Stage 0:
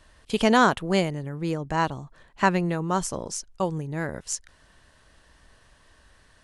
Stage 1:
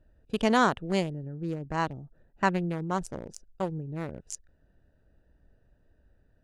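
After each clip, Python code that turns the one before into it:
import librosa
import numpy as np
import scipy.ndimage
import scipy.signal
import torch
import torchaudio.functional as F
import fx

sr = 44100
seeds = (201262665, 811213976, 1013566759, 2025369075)

y = fx.wiener(x, sr, points=41)
y = y * 10.0 ** (-4.0 / 20.0)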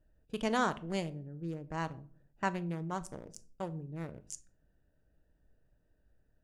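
y = fx.high_shelf(x, sr, hz=5600.0, db=4.5)
y = fx.notch(y, sr, hz=4100.0, q=19.0)
y = fx.room_shoebox(y, sr, seeds[0], volume_m3=450.0, walls='furnished', distance_m=0.49)
y = y * 10.0 ** (-8.0 / 20.0)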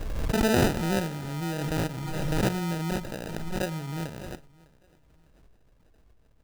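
y = fx.sample_hold(x, sr, seeds[1], rate_hz=1100.0, jitter_pct=0)
y = fx.echo_feedback(y, sr, ms=604, feedback_pct=31, wet_db=-24)
y = fx.pre_swell(y, sr, db_per_s=25.0)
y = y * 10.0 ** (7.0 / 20.0)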